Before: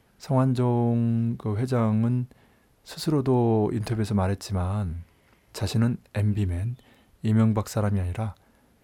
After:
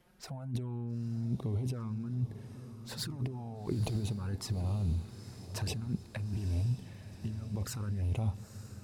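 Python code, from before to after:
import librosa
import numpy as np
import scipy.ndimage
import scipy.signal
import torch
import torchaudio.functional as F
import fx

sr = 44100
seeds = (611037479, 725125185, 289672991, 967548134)

y = fx.over_compress(x, sr, threshold_db=-30.0, ratio=-1.0)
y = fx.dynamic_eq(y, sr, hz=110.0, q=1.0, threshold_db=-37.0, ratio=4.0, max_db=4)
y = fx.env_flanger(y, sr, rest_ms=6.0, full_db=-22.5)
y = fx.echo_diffused(y, sr, ms=902, feedback_pct=57, wet_db=-12)
y = y * librosa.db_to_amplitude(-7.0)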